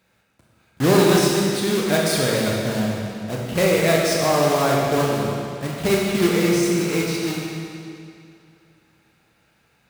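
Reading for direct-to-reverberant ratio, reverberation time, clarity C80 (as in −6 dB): −3.5 dB, 2.5 s, 0.5 dB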